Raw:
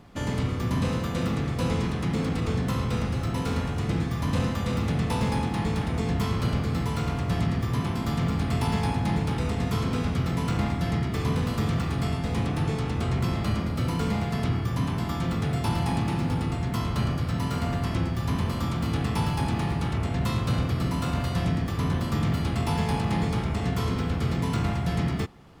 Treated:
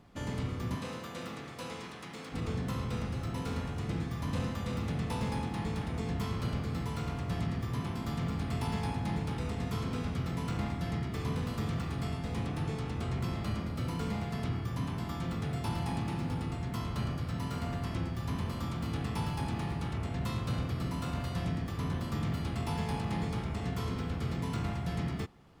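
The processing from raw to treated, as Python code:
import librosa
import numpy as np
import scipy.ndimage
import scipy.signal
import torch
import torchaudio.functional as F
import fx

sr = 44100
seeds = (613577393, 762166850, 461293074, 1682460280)

y = fx.highpass(x, sr, hz=fx.line((0.75, 350.0), (2.32, 1000.0)), slope=6, at=(0.75, 2.32), fade=0.02)
y = y * librosa.db_to_amplitude(-8.0)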